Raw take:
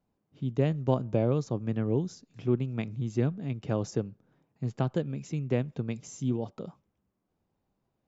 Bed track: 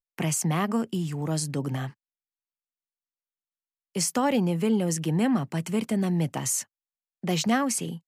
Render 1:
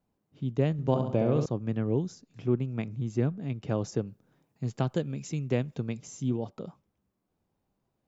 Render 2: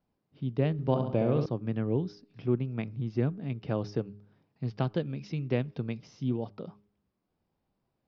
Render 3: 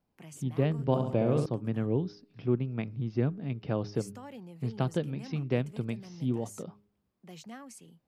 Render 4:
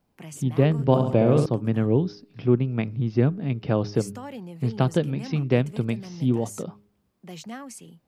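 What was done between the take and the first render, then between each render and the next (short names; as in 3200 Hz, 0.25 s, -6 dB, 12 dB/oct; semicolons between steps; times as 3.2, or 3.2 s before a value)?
0.72–1.46 flutter echo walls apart 11.6 m, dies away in 0.67 s; 2.1–3.46 dynamic EQ 3700 Hz, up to -4 dB, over -57 dBFS, Q 1.3; 4.07–5.89 high shelf 4000 Hz +8.5 dB
elliptic low-pass 5200 Hz, stop band 40 dB; de-hum 102.5 Hz, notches 4
add bed track -22 dB
gain +8 dB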